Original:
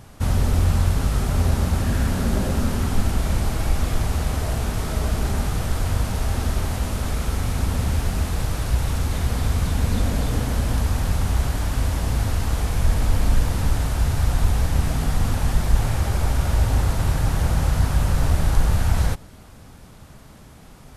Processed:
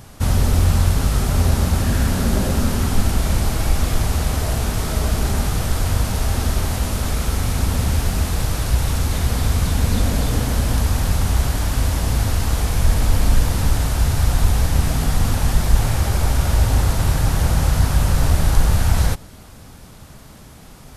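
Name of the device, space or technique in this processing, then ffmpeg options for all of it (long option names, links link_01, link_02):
presence and air boost: -af "equalizer=frequency=4900:width_type=o:width=1.4:gain=2.5,highshelf=frequency=11000:gain=7,volume=3dB"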